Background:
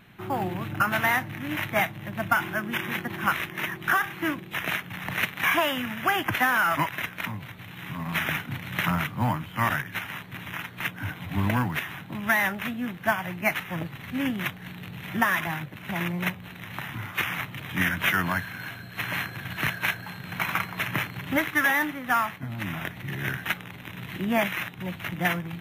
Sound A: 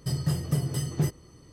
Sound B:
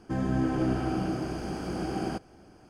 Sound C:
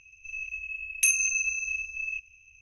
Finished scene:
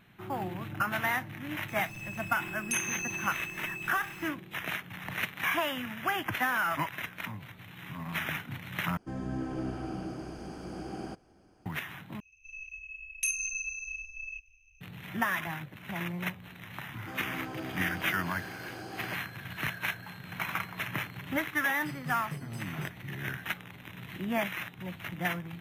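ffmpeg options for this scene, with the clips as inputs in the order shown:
-filter_complex "[3:a]asplit=2[a][b];[2:a]asplit=2[c][d];[0:a]volume=-6.5dB[e];[a]aeval=exprs='val(0)+0.5*0.0178*sgn(val(0))':c=same[f];[b]asubboost=boost=7.5:cutoff=50[g];[d]highpass=f=680:p=1[h];[1:a]lowshelf=f=110:t=q:w=1.5:g=-11[i];[e]asplit=3[j][k][l];[j]atrim=end=8.974[m];[c]atrim=end=2.69,asetpts=PTS-STARTPTS,volume=-8dB[n];[k]atrim=start=11.656:end=12.204[o];[g]atrim=end=2.61,asetpts=PTS-STARTPTS,volume=-8dB[p];[l]atrim=start=14.806[q];[f]atrim=end=2.61,asetpts=PTS-STARTPTS,volume=-10.5dB,afade=t=in:d=0.004:c=hsin,afade=t=out:st=2.606:d=0.004:c=hsin,adelay=1680[r];[h]atrim=end=2.69,asetpts=PTS-STARTPTS,volume=-5.5dB,afade=t=in:d=0.004:c=hsin,afade=t=out:st=2.686:d=0.004:c=hsin,adelay=16970[s];[i]atrim=end=1.52,asetpts=PTS-STARTPTS,volume=-14.5dB,afade=t=in:d=0.004:c=hsin,afade=t=out:st=1.516:d=0.004:c=hsin,adelay=21790[t];[m][n]acrossfade=d=0.004:c1=hsin:c2=hsin[u];[u][o]acrossfade=d=0.004:c1=hsin:c2=hsin[v];[v][p]acrossfade=d=0.004:c1=hsin:c2=hsin[w];[w][q]acrossfade=d=0.004:c1=hsin:c2=hsin[x];[x][r][s][t]amix=inputs=4:normalize=0"

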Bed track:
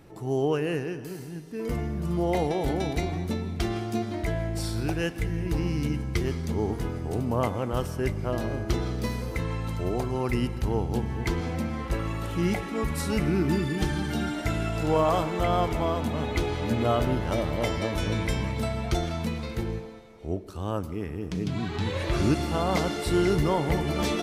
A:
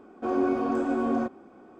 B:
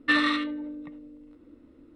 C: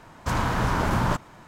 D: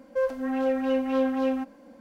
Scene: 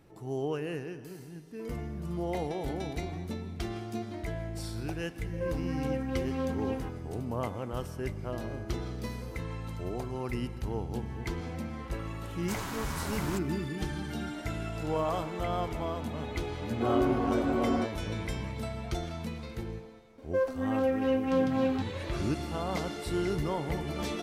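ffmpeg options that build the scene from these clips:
-filter_complex "[4:a]asplit=2[a][b];[0:a]volume=-7.5dB[c];[a]acrossover=split=380[d][e];[e]adelay=80[f];[d][f]amix=inputs=2:normalize=0[g];[3:a]crystalizer=i=4.5:c=0[h];[g]atrim=end=2,asetpts=PTS-STARTPTS,volume=-8dB,afade=t=in:d=0.004:c=hsin,afade=t=out:st=1.996:d=0.004:c=hsin,adelay=227997S[i];[h]atrim=end=1.47,asetpts=PTS-STARTPTS,volume=-16dB,afade=t=in:d=0.004:c=hsin,afade=t=out:st=1.466:d=0.004:c=hsin,adelay=12220[j];[1:a]atrim=end=1.79,asetpts=PTS-STARTPTS,volume=-2.5dB,afade=t=in:d=0.004:c=hsin,afade=t=out:st=1.786:d=0.004:c=hsin,adelay=16580[k];[b]atrim=end=2,asetpts=PTS-STARTPTS,volume=-2.5dB,afade=t=in:d=0.004:c=hsin,afade=t=out:st=1.996:d=0.004:c=hsin,adelay=20180[l];[c][i][j][k][l]amix=inputs=5:normalize=0"

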